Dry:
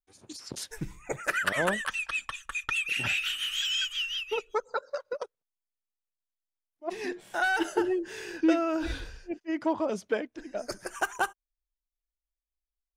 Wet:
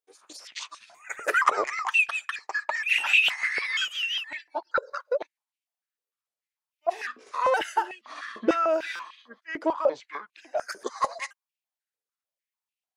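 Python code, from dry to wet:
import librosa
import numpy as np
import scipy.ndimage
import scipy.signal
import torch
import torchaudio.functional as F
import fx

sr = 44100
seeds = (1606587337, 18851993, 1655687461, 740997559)

y = fx.pitch_trill(x, sr, semitones=-6.5, every_ms=471)
y = fx.buffer_glitch(y, sr, at_s=(8.94,), block=256, repeats=8)
y = fx.filter_held_highpass(y, sr, hz=6.7, low_hz=440.0, high_hz=2600.0)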